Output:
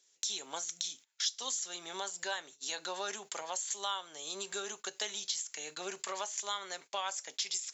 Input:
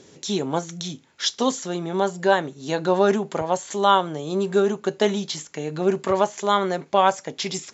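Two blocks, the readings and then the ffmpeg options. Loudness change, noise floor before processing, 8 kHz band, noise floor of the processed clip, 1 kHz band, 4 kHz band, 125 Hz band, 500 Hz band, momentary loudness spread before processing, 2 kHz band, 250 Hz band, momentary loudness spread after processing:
-14.5 dB, -54 dBFS, n/a, -70 dBFS, -19.0 dB, -7.0 dB, under -30 dB, -23.5 dB, 9 LU, -12.0 dB, -29.0 dB, 5 LU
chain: -filter_complex "[0:a]aderivative,acrossover=split=120[a][b];[b]acontrast=38[c];[a][c]amix=inputs=2:normalize=0,lowshelf=f=310:g=-7,agate=range=-19dB:threshold=-48dB:ratio=16:detection=peak,acompressor=threshold=-40dB:ratio=2.5,volume=2.5dB"

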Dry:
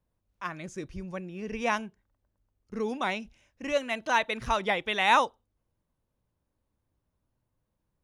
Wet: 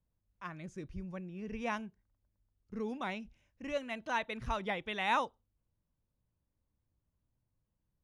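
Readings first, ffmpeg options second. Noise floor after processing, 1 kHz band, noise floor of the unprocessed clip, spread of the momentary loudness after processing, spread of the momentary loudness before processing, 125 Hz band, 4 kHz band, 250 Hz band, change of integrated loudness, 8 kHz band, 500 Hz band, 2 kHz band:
-84 dBFS, -9.0 dB, -81 dBFS, 15 LU, 16 LU, -3.5 dB, -10.5 dB, -5.0 dB, -9.0 dB, -12.5 dB, -8.5 dB, -9.0 dB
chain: -af "bass=f=250:g=7,treble=f=4k:g=-4,volume=-9dB"

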